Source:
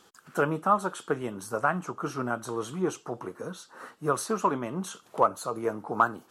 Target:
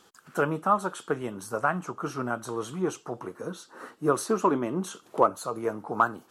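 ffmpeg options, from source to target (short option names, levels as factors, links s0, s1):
-filter_complex "[0:a]asettb=1/sr,asplit=3[s0][s1][s2];[s0]atrim=end=3.474[s3];[s1]atrim=start=3.47:end=5.3,asetpts=PTS-STARTPTS,afade=t=in:d=0.004:c=qsin,afade=t=out:st=1.826:d=0.004:c=qsin,equalizer=f=330:t=o:w=0.89:g=7.5[s4];[s2]atrim=start=5.296[s5];[s3][s4]acrossfade=d=0.004:c1=hsin:c2=qsin[s6];[s6][s5]acrossfade=d=0.004:c1=qsin:c2=hsin"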